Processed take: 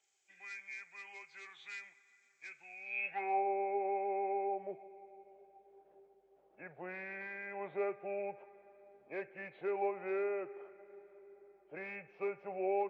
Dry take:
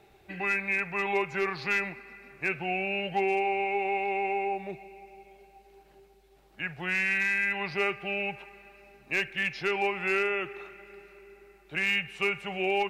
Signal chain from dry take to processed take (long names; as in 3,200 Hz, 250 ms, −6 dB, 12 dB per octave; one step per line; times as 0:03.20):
hearing-aid frequency compression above 2,200 Hz 1.5 to 1
band-pass filter sweep 6,900 Hz → 540 Hz, 0:02.77–0:03.45